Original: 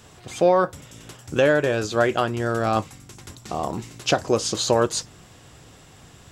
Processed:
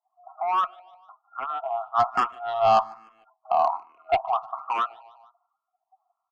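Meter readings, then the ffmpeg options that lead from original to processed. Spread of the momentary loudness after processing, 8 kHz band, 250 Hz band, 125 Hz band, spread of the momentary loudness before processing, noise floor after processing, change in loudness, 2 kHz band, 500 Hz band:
11 LU, under -25 dB, -21.0 dB, -20.0 dB, 21 LU, -83 dBFS, -3.0 dB, -11.0 dB, -8.0 dB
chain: -filter_complex "[0:a]afftdn=nr=30:nf=-40,afftfilt=real='re*between(b*sr/4096,640,1400)':imag='im*between(b*sr/4096,640,1400)':win_size=4096:overlap=0.75,acontrast=82,aemphasis=mode=reproduction:type=50fm,dynaudnorm=f=310:g=7:m=8dB,aeval=exprs='0.891*(cos(1*acos(clip(val(0)/0.891,-1,1)))-cos(1*PI/2))+0.00501*(cos(2*acos(clip(val(0)/0.891,-1,1)))-cos(2*PI/2))':c=same,asoftclip=type=tanh:threshold=-12dB,aecho=1:1:150|300|450:0.0668|0.0327|0.016,asplit=2[a][b];[b]afreqshift=1.2[c];[a][c]amix=inputs=2:normalize=1"

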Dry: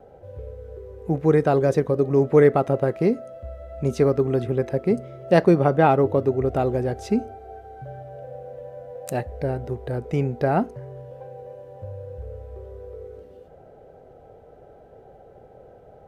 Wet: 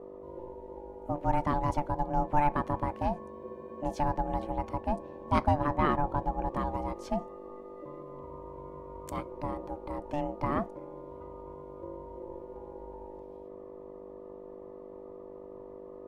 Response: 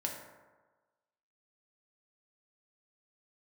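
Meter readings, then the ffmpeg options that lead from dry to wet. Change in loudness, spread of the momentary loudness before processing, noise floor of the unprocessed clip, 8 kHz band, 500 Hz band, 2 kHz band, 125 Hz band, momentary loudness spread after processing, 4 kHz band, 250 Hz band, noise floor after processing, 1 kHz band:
-11.5 dB, 22 LU, -49 dBFS, n/a, -15.0 dB, -9.5 dB, -12.0 dB, 18 LU, -7.5 dB, -11.0 dB, -46 dBFS, -2.5 dB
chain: -af "aeval=exprs='val(0)+0.0178*(sin(2*PI*50*n/s)+sin(2*PI*2*50*n/s)/2+sin(2*PI*3*50*n/s)/3+sin(2*PI*4*50*n/s)/4+sin(2*PI*5*50*n/s)/5)':c=same,aeval=exprs='val(0)*sin(2*PI*440*n/s)':c=same,volume=-7dB"

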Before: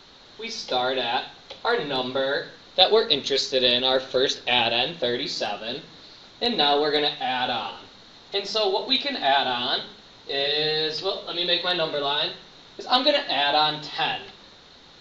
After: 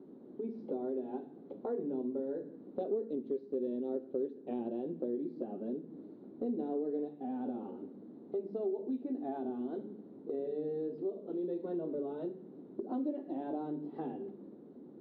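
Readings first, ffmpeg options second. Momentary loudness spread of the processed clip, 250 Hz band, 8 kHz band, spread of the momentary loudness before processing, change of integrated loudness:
11 LU, -3.0 dB, n/a, 12 LU, -15.5 dB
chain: -af "asuperpass=centerf=280:order=4:qfactor=1.5,acompressor=threshold=-46dB:ratio=3,volume=8.5dB"

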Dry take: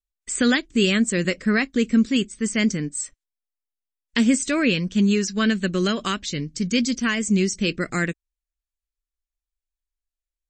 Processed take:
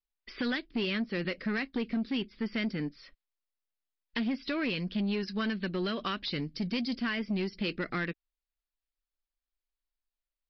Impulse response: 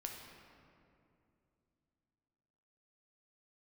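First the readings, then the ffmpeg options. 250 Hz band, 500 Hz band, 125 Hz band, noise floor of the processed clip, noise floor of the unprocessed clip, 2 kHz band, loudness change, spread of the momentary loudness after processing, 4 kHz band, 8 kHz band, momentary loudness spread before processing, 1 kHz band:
-11.5 dB, -10.5 dB, -11.0 dB, under -85 dBFS, under -85 dBFS, -10.5 dB, -11.0 dB, 3 LU, -10.0 dB, under -35 dB, 8 LU, -8.5 dB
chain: -af "equalizer=f=72:w=0.73:g=-10,acompressor=threshold=-25dB:ratio=4,aresample=11025,asoftclip=type=tanh:threshold=-23.5dB,aresample=44100,volume=-1.5dB"

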